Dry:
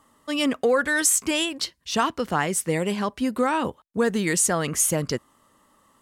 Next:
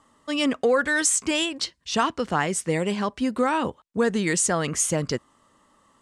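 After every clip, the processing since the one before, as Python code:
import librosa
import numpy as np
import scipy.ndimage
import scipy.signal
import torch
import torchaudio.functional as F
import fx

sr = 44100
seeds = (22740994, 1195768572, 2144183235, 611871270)

y = scipy.signal.sosfilt(scipy.signal.butter(4, 9000.0, 'lowpass', fs=sr, output='sos'), x)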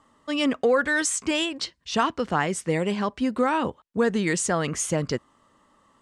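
y = fx.high_shelf(x, sr, hz=6800.0, db=-8.5)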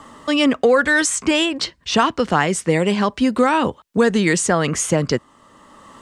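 y = fx.band_squash(x, sr, depth_pct=40)
y = y * 10.0 ** (7.0 / 20.0)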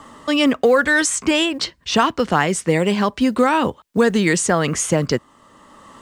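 y = fx.quant_companded(x, sr, bits=8)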